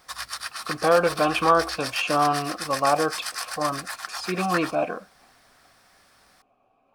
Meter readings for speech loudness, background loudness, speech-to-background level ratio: −24.0 LKFS, −32.0 LKFS, 8.0 dB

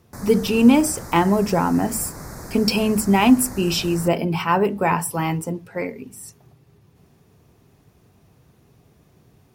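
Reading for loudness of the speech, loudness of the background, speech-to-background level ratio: −20.0 LKFS, −36.5 LKFS, 16.5 dB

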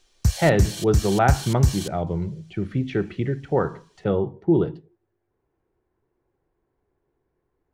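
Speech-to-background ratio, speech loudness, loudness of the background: 1.0 dB, −24.0 LKFS, −25.0 LKFS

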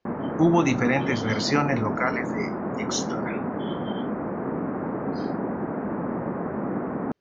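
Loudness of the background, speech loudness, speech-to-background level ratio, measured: −29.5 LKFS, −25.0 LKFS, 4.5 dB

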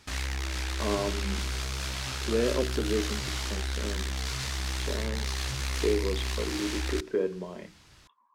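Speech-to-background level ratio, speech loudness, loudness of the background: −0.5 dB, −33.0 LKFS, −32.5 LKFS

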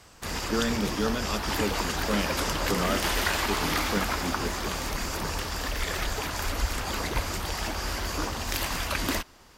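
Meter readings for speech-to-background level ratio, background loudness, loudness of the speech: −3.5 dB, −29.5 LKFS, −33.0 LKFS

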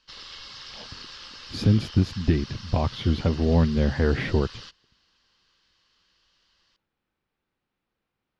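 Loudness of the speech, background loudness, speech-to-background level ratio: −24.5 LKFS, −40.5 LKFS, 16.0 dB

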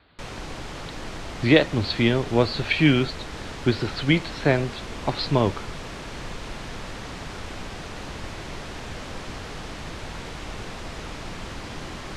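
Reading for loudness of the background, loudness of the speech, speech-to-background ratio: −36.0 LKFS, −23.0 LKFS, 13.0 dB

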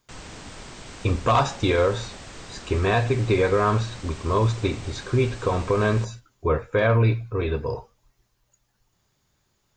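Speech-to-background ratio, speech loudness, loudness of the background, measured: 17.0 dB, −23.5 LKFS, −40.5 LKFS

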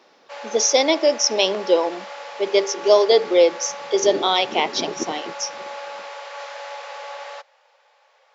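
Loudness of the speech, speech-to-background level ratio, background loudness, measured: −19.5 LKFS, 15.0 dB, −34.5 LKFS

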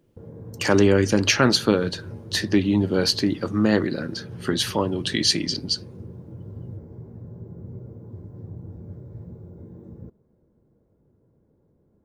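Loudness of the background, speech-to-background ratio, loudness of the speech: −40.0 LKFS, 18.5 dB, −21.5 LKFS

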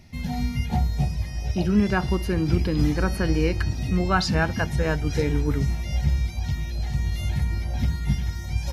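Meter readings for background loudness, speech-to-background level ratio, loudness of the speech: −27.5 LKFS, 2.0 dB, −25.5 LKFS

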